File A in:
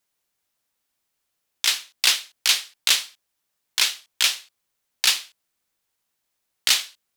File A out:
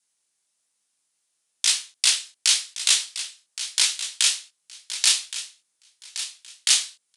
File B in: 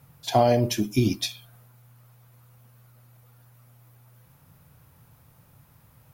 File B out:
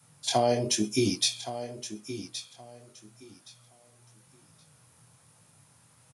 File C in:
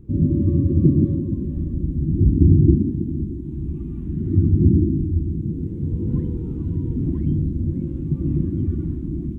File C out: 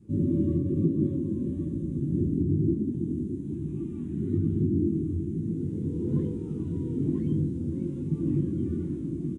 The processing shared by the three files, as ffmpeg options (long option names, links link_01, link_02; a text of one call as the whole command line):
ffmpeg -i in.wav -af "flanger=delay=18:depth=7:speed=1.1,adynamicequalizer=threshold=0.00631:dfrequency=430:dqfactor=3.3:tfrequency=430:tqfactor=3.3:attack=5:release=100:ratio=0.375:range=3.5:mode=boostabove:tftype=bell,aresample=22050,aresample=44100,alimiter=limit=-12.5dB:level=0:latency=1:release=431,highpass=130,aemphasis=mode=production:type=75fm,aecho=1:1:1120|2240|3360:0.251|0.0527|0.0111" out.wav